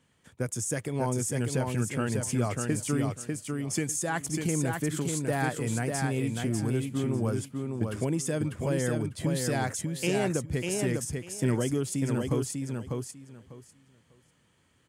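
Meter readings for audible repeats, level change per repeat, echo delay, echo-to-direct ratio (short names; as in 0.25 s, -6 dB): 3, -14.5 dB, 0.597 s, -4.0 dB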